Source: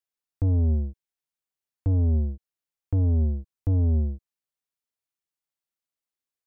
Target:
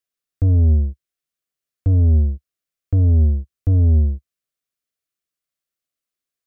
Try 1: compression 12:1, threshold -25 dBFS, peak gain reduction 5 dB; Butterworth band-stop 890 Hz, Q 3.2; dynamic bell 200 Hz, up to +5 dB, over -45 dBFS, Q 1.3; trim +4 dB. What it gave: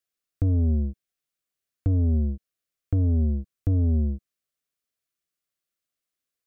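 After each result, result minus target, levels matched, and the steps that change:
250 Hz band +6.0 dB; compression: peak gain reduction +5 dB
change: dynamic bell 70 Hz, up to +5 dB, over -45 dBFS, Q 1.3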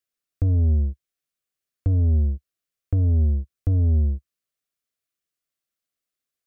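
compression: peak gain reduction +5 dB
remove: compression 12:1, threshold -25 dBFS, peak gain reduction 5 dB

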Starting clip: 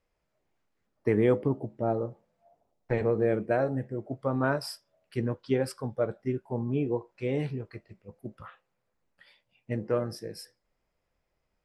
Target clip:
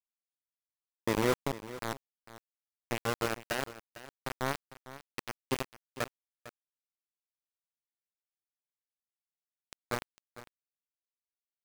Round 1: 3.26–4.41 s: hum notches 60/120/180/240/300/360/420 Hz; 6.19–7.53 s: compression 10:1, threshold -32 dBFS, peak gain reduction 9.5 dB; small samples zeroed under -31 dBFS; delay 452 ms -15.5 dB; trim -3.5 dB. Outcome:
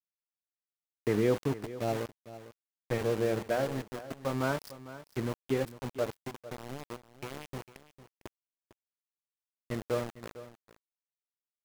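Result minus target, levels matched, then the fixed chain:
small samples zeroed: distortion -13 dB
3.26–4.41 s: hum notches 60/120/180/240/300/360/420 Hz; 6.19–7.53 s: compression 10:1, threshold -32 dBFS, peak gain reduction 9.5 dB; small samples zeroed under -19.5 dBFS; delay 452 ms -15.5 dB; trim -3.5 dB

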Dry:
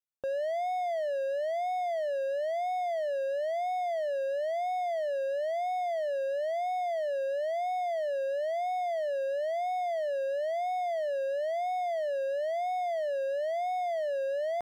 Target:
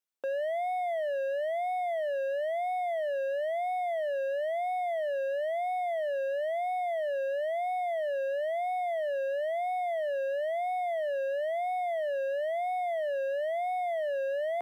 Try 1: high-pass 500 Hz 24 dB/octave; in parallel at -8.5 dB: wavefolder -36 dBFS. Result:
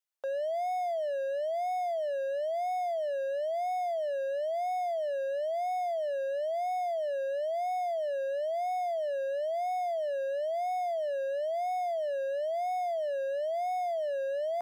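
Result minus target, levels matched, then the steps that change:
250 Hz band -7.0 dB
change: high-pass 200 Hz 24 dB/octave

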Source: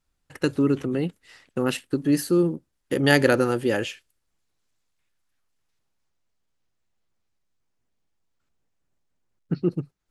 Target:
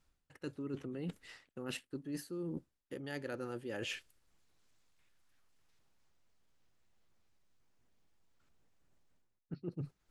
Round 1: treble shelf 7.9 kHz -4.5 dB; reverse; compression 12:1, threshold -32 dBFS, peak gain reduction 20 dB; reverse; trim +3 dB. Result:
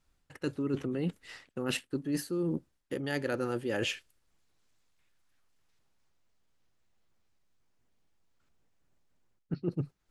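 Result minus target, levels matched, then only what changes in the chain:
compression: peak gain reduction -9 dB
change: compression 12:1, threshold -42 dBFS, peak gain reduction 29 dB

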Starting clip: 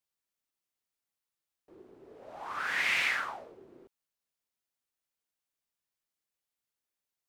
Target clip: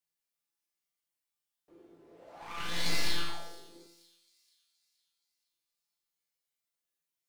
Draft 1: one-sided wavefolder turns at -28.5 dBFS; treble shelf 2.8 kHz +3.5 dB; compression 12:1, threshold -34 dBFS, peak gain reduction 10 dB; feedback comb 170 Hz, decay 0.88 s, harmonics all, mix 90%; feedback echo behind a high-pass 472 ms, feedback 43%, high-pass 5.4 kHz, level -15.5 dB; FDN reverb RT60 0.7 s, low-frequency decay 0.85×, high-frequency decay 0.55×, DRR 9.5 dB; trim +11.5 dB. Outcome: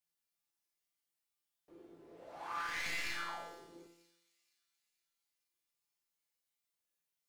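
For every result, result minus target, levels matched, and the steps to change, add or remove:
compression: peak gain reduction +10 dB; one-sided wavefolder: distortion -14 dB
remove: compression 12:1, threshold -34 dBFS, peak gain reduction 10 dB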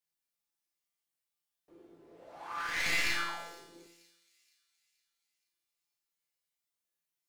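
one-sided wavefolder: distortion -14 dB
change: one-sided wavefolder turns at -39.5 dBFS

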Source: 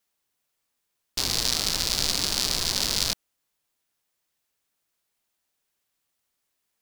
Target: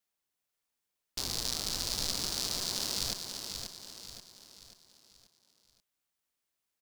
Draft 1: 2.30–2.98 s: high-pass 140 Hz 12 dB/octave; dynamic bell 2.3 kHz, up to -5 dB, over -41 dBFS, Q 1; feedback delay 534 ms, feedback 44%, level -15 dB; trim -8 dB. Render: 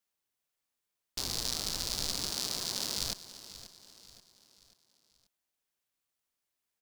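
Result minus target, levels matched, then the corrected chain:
echo-to-direct -8.5 dB
2.30–2.98 s: high-pass 140 Hz 12 dB/octave; dynamic bell 2.3 kHz, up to -5 dB, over -41 dBFS, Q 1; feedback delay 534 ms, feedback 44%, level -6.5 dB; trim -8 dB

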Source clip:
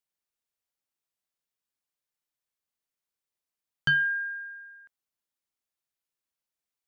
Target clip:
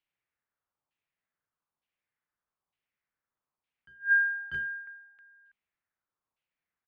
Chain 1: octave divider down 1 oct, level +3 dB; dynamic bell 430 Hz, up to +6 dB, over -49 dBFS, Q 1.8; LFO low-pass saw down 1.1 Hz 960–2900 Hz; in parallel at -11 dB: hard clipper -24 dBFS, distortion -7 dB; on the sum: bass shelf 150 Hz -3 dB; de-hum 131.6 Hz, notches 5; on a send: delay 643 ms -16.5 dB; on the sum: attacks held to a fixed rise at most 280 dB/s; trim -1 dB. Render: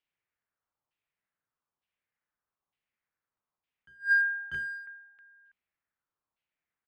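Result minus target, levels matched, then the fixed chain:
hard clipper: distortion +19 dB
octave divider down 1 oct, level +3 dB; dynamic bell 430 Hz, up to +6 dB, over -49 dBFS, Q 1.8; LFO low-pass saw down 1.1 Hz 960–2900 Hz; in parallel at -11 dB: hard clipper -13 dBFS, distortion -26 dB; on the sum: bass shelf 150 Hz -3 dB; de-hum 131.6 Hz, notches 5; on a send: delay 643 ms -16.5 dB; on the sum: attacks held to a fixed rise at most 280 dB/s; trim -1 dB

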